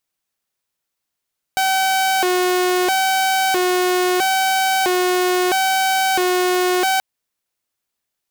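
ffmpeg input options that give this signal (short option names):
-f lavfi -i "aevalsrc='0.237*(2*mod((563.5*t+200.5/0.76*(0.5-abs(mod(0.76*t,1)-0.5))),1)-1)':d=5.43:s=44100"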